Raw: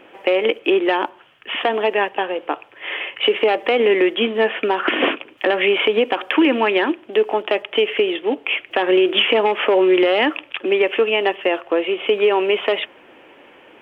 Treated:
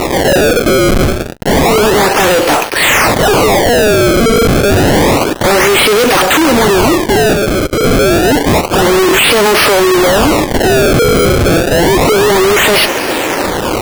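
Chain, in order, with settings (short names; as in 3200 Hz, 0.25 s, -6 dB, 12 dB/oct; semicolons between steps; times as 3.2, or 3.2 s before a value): fuzz box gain 44 dB, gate -53 dBFS; 7.33–7.84 level quantiser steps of 17 dB; decimation with a swept rate 27×, swing 160% 0.29 Hz; gain +5.5 dB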